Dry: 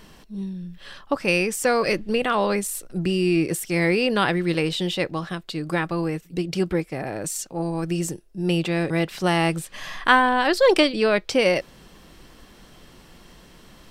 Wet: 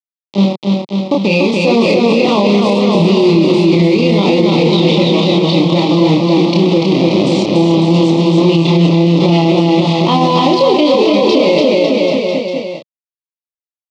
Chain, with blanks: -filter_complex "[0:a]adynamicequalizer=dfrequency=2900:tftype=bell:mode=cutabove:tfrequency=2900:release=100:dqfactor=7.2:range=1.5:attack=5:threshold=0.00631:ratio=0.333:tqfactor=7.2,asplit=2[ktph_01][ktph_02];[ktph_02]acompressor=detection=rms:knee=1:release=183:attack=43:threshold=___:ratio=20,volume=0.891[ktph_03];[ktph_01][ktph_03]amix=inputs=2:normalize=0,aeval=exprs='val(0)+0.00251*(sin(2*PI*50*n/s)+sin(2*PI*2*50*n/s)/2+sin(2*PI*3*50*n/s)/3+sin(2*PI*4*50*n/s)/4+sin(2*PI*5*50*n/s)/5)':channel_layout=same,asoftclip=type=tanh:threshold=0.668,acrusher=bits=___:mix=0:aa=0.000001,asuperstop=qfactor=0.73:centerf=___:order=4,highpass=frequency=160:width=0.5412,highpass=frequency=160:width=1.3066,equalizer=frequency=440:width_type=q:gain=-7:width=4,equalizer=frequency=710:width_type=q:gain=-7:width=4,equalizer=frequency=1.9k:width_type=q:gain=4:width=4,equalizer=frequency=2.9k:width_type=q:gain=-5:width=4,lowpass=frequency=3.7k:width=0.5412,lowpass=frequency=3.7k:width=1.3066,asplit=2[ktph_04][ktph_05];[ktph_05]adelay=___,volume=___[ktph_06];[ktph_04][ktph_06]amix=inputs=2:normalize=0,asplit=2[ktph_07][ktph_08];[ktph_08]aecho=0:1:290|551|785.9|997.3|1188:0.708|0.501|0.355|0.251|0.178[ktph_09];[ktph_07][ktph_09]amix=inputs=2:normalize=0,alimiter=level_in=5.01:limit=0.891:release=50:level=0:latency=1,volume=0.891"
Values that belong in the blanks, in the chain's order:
0.0355, 3, 1600, 30, 0.708